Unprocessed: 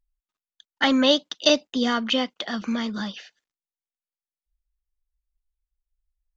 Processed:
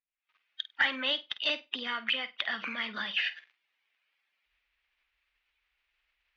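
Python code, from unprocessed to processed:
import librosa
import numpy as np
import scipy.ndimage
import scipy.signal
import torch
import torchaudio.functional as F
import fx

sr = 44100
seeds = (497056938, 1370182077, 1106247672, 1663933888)

p1 = fx.spec_quant(x, sr, step_db=15)
p2 = fx.recorder_agc(p1, sr, target_db=-13.5, rise_db_per_s=73.0, max_gain_db=30)
p3 = fx.bandpass_q(p2, sr, hz=2400.0, q=2.4)
p4 = 10.0 ** (-20.5 / 20.0) * (np.abs((p3 / 10.0 ** (-20.5 / 20.0) + 3.0) % 4.0 - 2.0) - 1.0)
p5 = p3 + (p4 * 10.0 ** (-7.0 / 20.0))
p6 = fx.air_absorb(p5, sr, metres=240.0)
y = fx.room_flutter(p6, sr, wall_m=8.5, rt60_s=0.21)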